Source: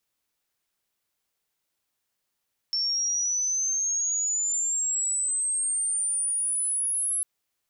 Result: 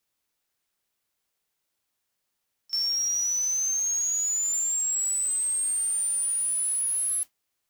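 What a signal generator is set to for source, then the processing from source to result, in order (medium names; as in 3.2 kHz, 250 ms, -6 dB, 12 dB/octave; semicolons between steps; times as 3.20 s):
sweep logarithmic 5.4 kHz -> 11 kHz -23.5 dBFS -> -24 dBFS 4.50 s
modulation noise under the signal 21 dB; pre-echo 35 ms -20.5 dB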